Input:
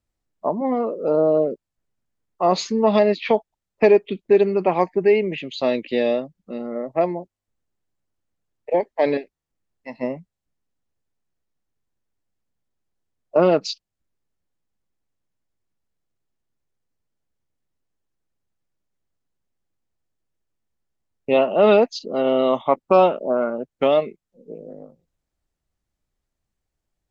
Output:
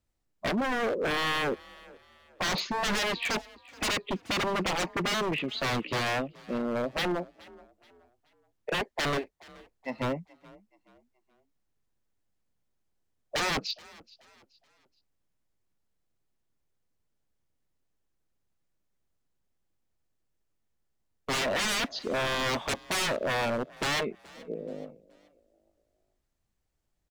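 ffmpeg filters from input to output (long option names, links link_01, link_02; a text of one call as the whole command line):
ffmpeg -i in.wav -filter_complex "[0:a]acrossover=split=4600[link_01][link_02];[link_02]acompressor=threshold=-56dB:ratio=4:attack=1:release=60[link_03];[link_01][link_03]amix=inputs=2:normalize=0,aeval=exprs='0.0668*(abs(mod(val(0)/0.0668+3,4)-2)-1)':channel_layout=same,asplit=4[link_04][link_05][link_06][link_07];[link_05]adelay=426,afreqshift=37,volume=-22.5dB[link_08];[link_06]adelay=852,afreqshift=74,volume=-31.1dB[link_09];[link_07]adelay=1278,afreqshift=111,volume=-39.8dB[link_10];[link_04][link_08][link_09][link_10]amix=inputs=4:normalize=0" out.wav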